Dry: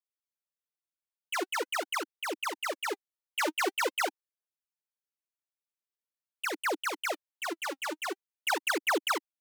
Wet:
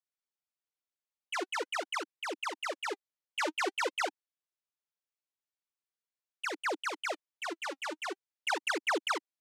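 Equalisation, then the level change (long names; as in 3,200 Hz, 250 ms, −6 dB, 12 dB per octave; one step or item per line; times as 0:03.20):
band-pass filter 250–7,700 Hz
−2.5 dB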